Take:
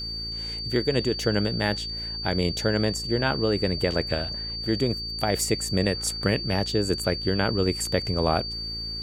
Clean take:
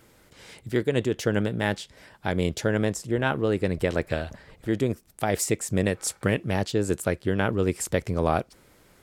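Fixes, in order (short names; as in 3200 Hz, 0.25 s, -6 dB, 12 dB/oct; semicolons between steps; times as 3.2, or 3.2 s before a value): de-click; de-hum 56 Hz, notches 8; notch 4600 Hz, Q 30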